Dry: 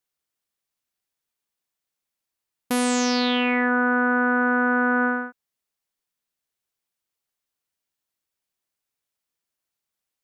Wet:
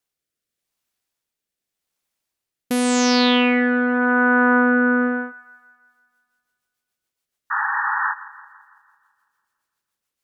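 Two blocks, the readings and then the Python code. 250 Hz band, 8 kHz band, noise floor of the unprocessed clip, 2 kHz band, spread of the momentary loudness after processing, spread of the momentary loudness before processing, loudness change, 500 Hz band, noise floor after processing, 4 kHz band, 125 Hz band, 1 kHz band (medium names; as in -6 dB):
+5.0 dB, +3.0 dB, -85 dBFS, +3.5 dB, 11 LU, 5 LU, +3.0 dB, +4.5 dB, -85 dBFS, +5.0 dB, no reading, +3.5 dB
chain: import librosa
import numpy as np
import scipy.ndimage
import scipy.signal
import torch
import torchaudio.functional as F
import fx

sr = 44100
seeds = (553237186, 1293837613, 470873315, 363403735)

y = fx.rotary_switch(x, sr, hz=0.85, then_hz=7.0, switch_at_s=5.47)
y = fx.spec_paint(y, sr, seeds[0], shape='noise', start_s=7.5, length_s=0.64, low_hz=790.0, high_hz=1900.0, level_db=-28.0)
y = fx.echo_wet_bandpass(y, sr, ms=167, feedback_pct=55, hz=1200.0, wet_db=-17.0)
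y = y * 10.0 ** (6.0 / 20.0)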